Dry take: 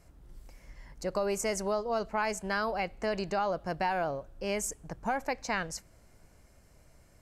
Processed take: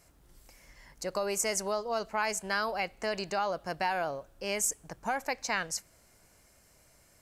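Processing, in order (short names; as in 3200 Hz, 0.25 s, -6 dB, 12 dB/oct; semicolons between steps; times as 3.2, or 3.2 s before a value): tilt +2 dB/oct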